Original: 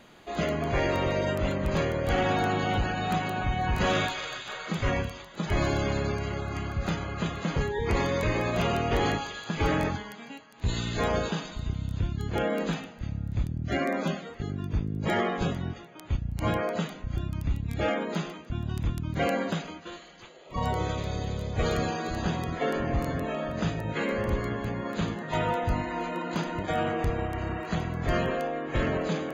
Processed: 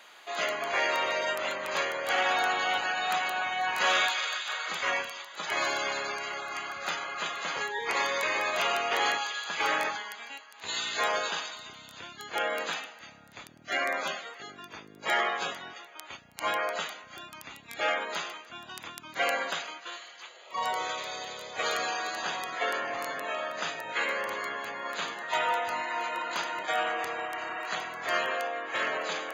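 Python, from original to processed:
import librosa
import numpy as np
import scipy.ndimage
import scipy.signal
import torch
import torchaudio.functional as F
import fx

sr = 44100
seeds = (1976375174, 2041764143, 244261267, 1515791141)

y = scipy.signal.sosfilt(scipy.signal.butter(2, 920.0, 'highpass', fs=sr, output='sos'), x)
y = F.gain(torch.from_numpy(y), 5.0).numpy()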